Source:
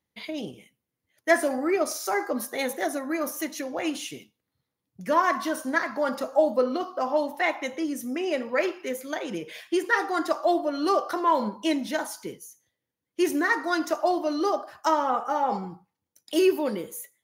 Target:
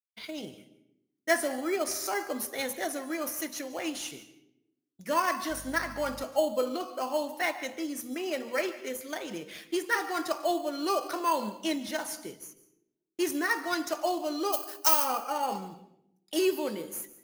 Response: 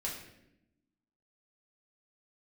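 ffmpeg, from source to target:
-filter_complex "[0:a]agate=range=-33dB:threshold=-42dB:ratio=3:detection=peak,bandreject=frequency=60:width_type=h:width=6,bandreject=frequency=120:width_type=h:width=6,bandreject=frequency=180:width_type=h:width=6,bandreject=frequency=240:width_type=h:width=6,asplit=2[link_01][link_02];[link_02]acrusher=samples=12:mix=1:aa=0.000001,volume=-11.5dB[link_03];[link_01][link_03]amix=inputs=2:normalize=0,highshelf=frequency=2400:gain=8.5,asettb=1/sr,asplit=3[link_04][link_05][link_06];[link_04]atrim=end=5.504[link_07];[link_05]atrim=start=5.5:end=6.24,asetpts=PTS-STARTPTS,afade=type=in:duration=0.004:curve=qsin,afade=type=out:start_time=0.736:duration=0.004:curve=qsin,aeval=exprs='val(0)+0.0126*(sin(2*PI*50*n/s)+sin(2*PI*2*50*n/s)/2+sin(2*PI*3*50*n/s)/3+sin(2*PI*4*50*n/s)/4+sin(2*PI*5*50*n/s)/5)':channel_layout=same[link_08];[link_06]atrim=start=6.236[link_09];[link_07][link_08]acrossfade=duration=0.004:curve1=hsin:curve2=qsin[link_10];[link_10][link_09]acrossfade=duration=0.004:curve1=qsin:curve2=hsin,asplit=3[link_11][link_12][link_13];[link_11]afade=type=out:start_time=14.52:duration=0.02[link_14];[link_12]aemphasis=mode=production:type=riaa,afade=type=in:start_time=14.52:duration=0.02,afade=type=out:start_time=15.04:duration=0.02[link_15];[link_13]afade=type=in:start_time=15.04:duration=0.02[link_16];[link_14][link_15][link_16]amix=inputs=3:normalize=0,asplit=2[link_17][link_18];[1:a]atrim=start_sample=2205,asetrate=52920,aresample=44100,adelay=142[link_19];[link_18][link_19]afir=irnorm=-1:irlink=0,volume=-15.5dB[link_20];[link_17][link_20]amix=inputs=2:normalize=0,volume=-8dB"

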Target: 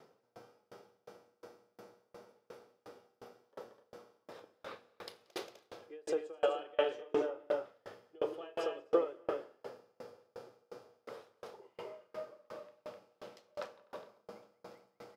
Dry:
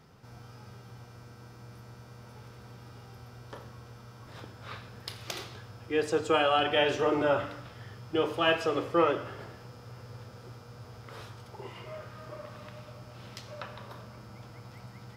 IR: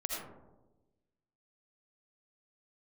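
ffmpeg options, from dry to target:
-af "highpass=250,equalizer=frequency=500:width=1.1:gain=11.5,acompressor=threshold=-21dB:ratio=6,aecho=1:1:180.8|253.6|285.7:0.316|0.501|0.251,aeval=exprs='val(0)*pow(10,-35*if(lt(mod(2.8*n/s,1),2*abs(2.8)/1000),1-mod(2.8*n/s,1)/(2*abs(2.8)/1000),(mod(2.8*n/s,1)-2*abs(2.8)/1000)/(1-2*abs(2.8)/1000))/20)':channel_layout=same,volume=-2.5dB"

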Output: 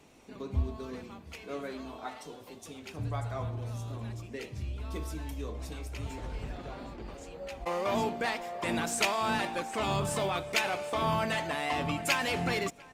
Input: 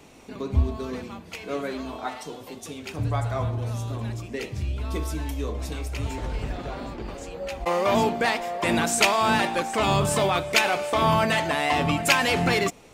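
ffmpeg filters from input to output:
ffmpeg -i in.wav -filter_complex "[0:a]asplit=2[link_01][link_02];[link_02]adelay=699.7,volume=-22dB,highshelf=frequency=4000:gain=-15.7[link_03];[link_01][link_03]amix=inputs=2:normalize=0,volume=-8.5dB" -ar 48000 -c:a libopus -b:a 48k out.opus

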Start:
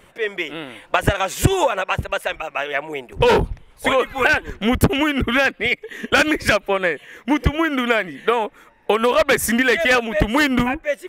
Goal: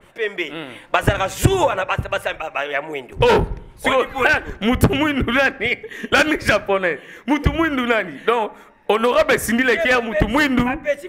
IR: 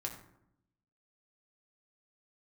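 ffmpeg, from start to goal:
-filter_complex "[0:a]asplit=2[link_01][link_02];[link_02]highshelf=frequency=11000:gain=-10[link_03];[1:a]atrim=start_sample=2205[link_04];[link_03][link_04]afir=irnorm=-1:irlink=0,volume=-10dB[link_05];[link_01][link_05]amix=inputs=2:normalize=0,adynamicequalizer=threshold=0.0447:dfrequency=2500:dqfactor=0.7:tfrequency=2500:tqfactor=0.7:attack=5:release=100:ratio=0.375:range=2.5:mode=cutabove:tftype=highshelf,volume=-1dB"

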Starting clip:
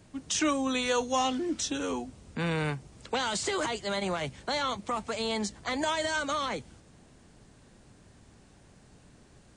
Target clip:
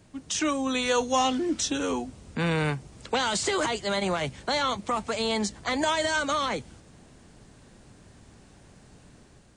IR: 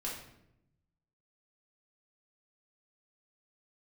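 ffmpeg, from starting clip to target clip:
-af "dynaudnorm=framelen=510:gausssize=3:maxgain=4dB"

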